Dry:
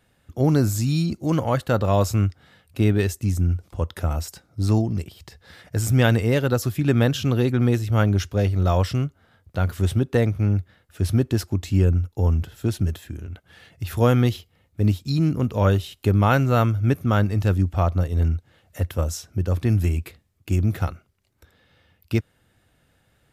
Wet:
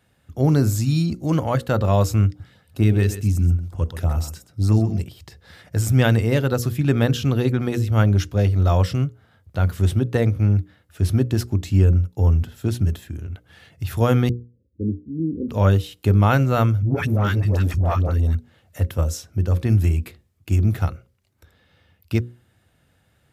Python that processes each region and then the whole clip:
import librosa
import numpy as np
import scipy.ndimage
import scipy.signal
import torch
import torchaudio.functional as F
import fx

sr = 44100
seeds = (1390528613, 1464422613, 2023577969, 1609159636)

y = fx.chain(x, sr, fx.filter_lfo_notch(shape='saw_up', hz=5.3, low_hz=490.0, high_hz=5100.0, q=1.4),
    fx.echo_single(ms=128, db=-12.0), at=(2.27, 5.0))
y = fx.chain(y, sr, fx.steep_lowpass(hz=570.0, slope=96),
    fx.fixed_phaser(hz=310.0, stages=4), at=(14.29, 15.49))
y = fx.chain(y, sr, fx.dispersion(late='highs', ms=136.0, hz=670.0),
    fx.tube_stage(drive_db=14.0, bias=0.5),
    fx.env_flatten(amount_pct=70), at=(16.82, 18.35))
y = scipy.signal.sosfilt(scipy.signal.butter(2, 71.0, 'highpass', fs=sr, output='sos'), y)
y = fx.low_shelf(y, sr, hz=100.0, db=9.0)
y = fx.hum_notches(y, sr, base_hz=60, count=9)